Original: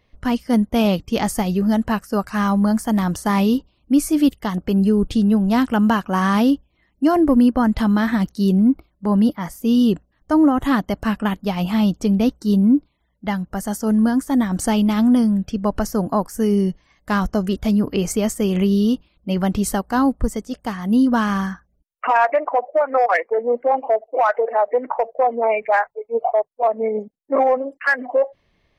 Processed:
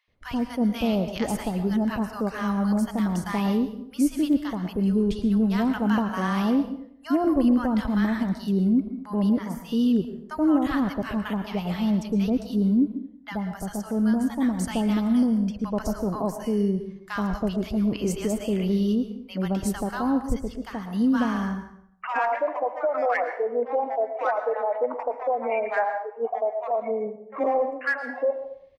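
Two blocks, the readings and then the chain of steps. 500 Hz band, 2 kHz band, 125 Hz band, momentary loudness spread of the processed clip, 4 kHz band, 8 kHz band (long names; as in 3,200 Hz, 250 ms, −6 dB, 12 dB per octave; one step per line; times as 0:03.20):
−6.0 dB, −7.0 dB, −6.0 dB, 8 LU, −7.0 dB, −9.0 dB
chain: high-shelf EQ 5,000 Hz −4.5 dB
multiband delay without the direct sound highs, lows 80 ms, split 990 Hz
dense smooth reverb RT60 0.65 s, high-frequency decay 0.75×, pre-delay 100 ms, DRR 8.5 dB
level −6 dB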